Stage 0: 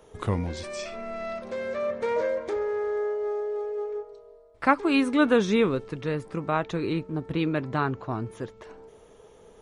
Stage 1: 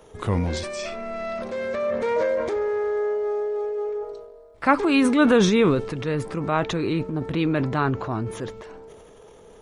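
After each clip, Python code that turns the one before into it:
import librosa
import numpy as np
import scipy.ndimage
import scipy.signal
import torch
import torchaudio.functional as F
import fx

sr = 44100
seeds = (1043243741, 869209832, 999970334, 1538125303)

y = fx.transient(x, sr, attack_db=-2, sustain_db=8)
y = y * 10.0 ** (3.5 / 20.0)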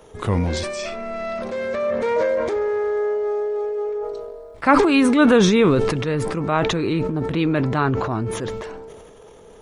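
y = fx.sustainer(x, sr, db_per_s=30.0)
y = y * 10.0 ** (2.5 / 20.0)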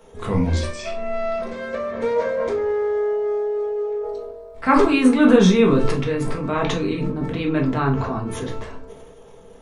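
y = fx.room_shoebox(x, sr, seeds[0], volume_m3=200.0, walls='furnished', distance_m=1.6)
y = y * 10.0 ** (-5.0 / 20.0)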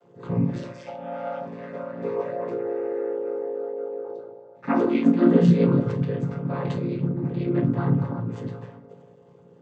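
y = fx.chord_vocoder(x, sr, chord='minor triad', root=46)
y = y * 10.0 ** (-3.0 / 20.0)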